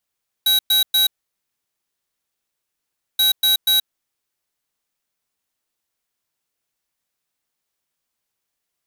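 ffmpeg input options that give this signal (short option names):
-f lavfi -i "aevalsrc='0.168*(2*lt(mod(3870*t,1),0.5)-1)*clip(min(mod(mod(t,2.73),0.24),0.13-mod(mod(t,2.73),0.24))/0.005,0,1)*lt(mod(t,2.73),0.72)':d=5.46:s=44100"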